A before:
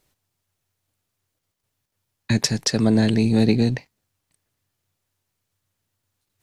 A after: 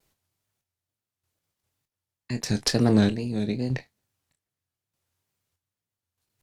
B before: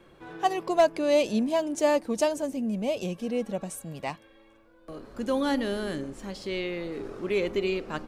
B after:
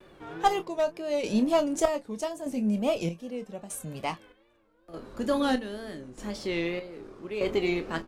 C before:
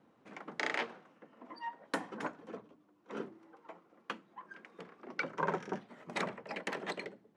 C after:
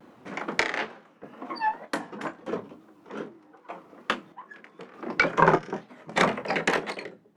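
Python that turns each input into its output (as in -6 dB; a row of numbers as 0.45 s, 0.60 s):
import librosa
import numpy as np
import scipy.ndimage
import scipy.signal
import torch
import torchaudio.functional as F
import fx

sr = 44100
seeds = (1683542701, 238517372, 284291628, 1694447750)

p1 = fx.chopper(x, sr, hz=0.81, depth_pct=65, duty_pct=50)
p2 = fx.cheby_harmonics(p1, sr, harmonics=(4,), levels_db=(-18,), full_scale_db=-6.5)
p3 = fx.wow_flutter(p2, sr, seeds[0], rate_hz=2.1, depth_cents=120.0)
p4 = p3 + fx.room_early_taps(p3, sr, ms=(24, 37), db=(-10.5, -17.5), dry=0)
y = p4 * 10.0 ** (-30 / 20.0) / np.sqrt(np.mean(np.square(p4)))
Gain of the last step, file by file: -3.0 dB, +1.5 dB, +14.5 dB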